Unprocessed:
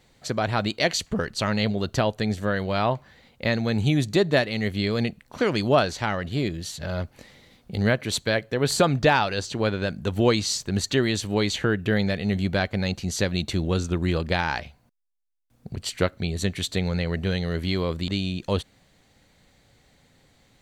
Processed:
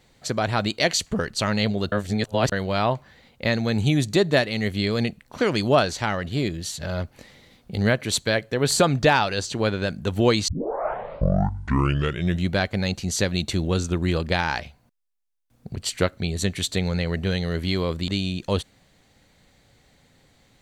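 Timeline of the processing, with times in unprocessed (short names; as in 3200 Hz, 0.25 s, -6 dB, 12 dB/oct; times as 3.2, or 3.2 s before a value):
1.92–2.52 reverse
10.48 tape start 2.06 s
whole clip: dynamic EQ 8300 Hz, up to +4 dB, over -46 dBFS, Q 0.77; gain +1 dB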